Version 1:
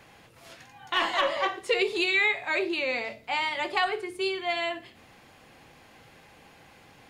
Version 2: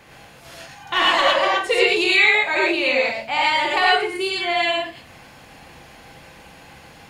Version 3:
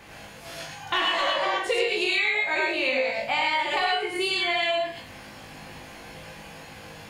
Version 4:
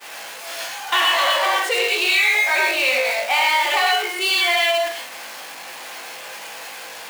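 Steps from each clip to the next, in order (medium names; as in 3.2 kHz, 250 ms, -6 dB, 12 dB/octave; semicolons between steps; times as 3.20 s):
gated-style reverb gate 140 ms rising, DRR -3.5 dB; trim +4.5 dB
on a send: flutter echo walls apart 3.3 m, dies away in 0.23 s; on the sum: compression 6:1, threshold -22 dBFS, peak gain reduction 12 dB
jump at every zero crossing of -26.5 dBFS; high-pass 620 Hz 12 dB/octave; expander -25 dBFS; trim +5 dB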